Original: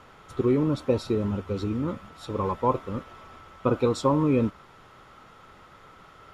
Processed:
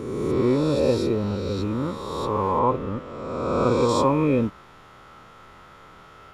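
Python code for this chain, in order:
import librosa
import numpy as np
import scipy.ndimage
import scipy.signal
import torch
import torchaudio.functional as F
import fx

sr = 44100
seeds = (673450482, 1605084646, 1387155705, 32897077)

y = fx.spec_swells(x, sr, rise_s=1.83)
y = fx.high_shelf(y, sr, hz=5800.0, db=-10.5, at=(2.59, 3.89))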